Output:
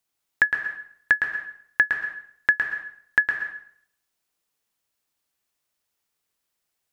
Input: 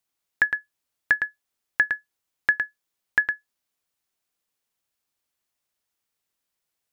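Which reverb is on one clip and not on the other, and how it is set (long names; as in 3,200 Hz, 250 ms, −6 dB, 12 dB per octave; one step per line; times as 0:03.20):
dense smooth reverb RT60 0.63 s, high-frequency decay 0.85×, pre-delay 110 ms, DRR 5.5 dB
level +1.5 dB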